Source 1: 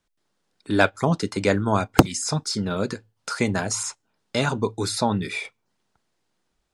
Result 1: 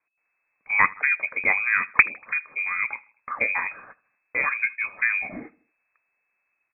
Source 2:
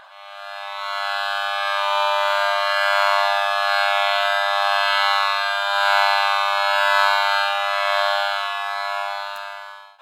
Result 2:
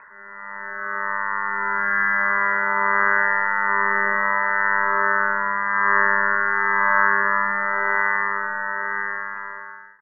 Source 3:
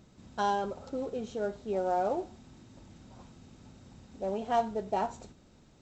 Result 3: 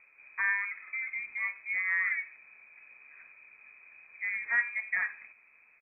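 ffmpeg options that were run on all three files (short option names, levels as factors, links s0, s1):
-af "lowshelf=f=350:g=-3,aecho=1:1:79|158|237:0.0708|0.0326|0.015,lowpass=f=2200:t=q:w=0.5098,lowpass=f=2200:t=q:w=0.6013,lowpass=f=2200:t=q:w=0.9,lowpass=f=2200:t=q:w=2.563,afreqshift=-2600"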